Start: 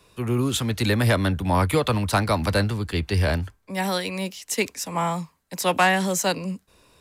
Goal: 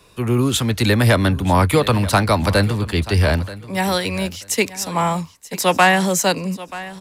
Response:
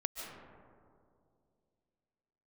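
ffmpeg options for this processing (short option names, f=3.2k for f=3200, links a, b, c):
-af "aecho=1:1:933|1866:0.141|0.0268,volume=5.5dB"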